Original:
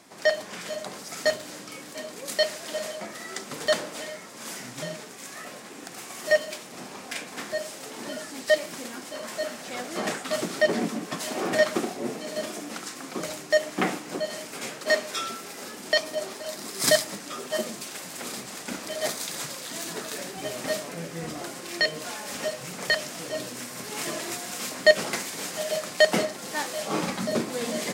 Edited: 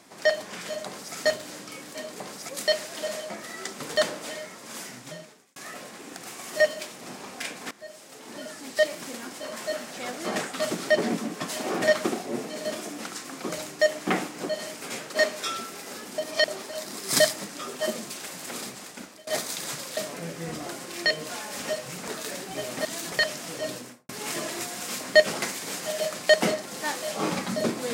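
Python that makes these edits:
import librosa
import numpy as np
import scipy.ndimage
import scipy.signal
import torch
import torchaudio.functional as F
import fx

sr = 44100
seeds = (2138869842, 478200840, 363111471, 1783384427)

y = fx.studio_fade_out(x, sr, start_s=23.43, length_s=0.37)
y = fx.edit(y, sr, fx.duplicate(start_s=0.86, length_s=0.29, to_s=2.2),
    fx.fade_out_span(start_s=4.4, length_s=0.87),
    fx.fade_in_from(start_s=7.42, length_s=1.69, curve='qsin', floor_db=-18.0),
    fx.reverse_span(start_s=15.89, length_s=0.3),
    fx.fade_out_to(start_s=18.31, length_s=0.67, floor_db=-22.0),
    fx.swap(start_s=19.68, length_s=0.27, other_s=20.72, other_length_s=2.11), tone=tone)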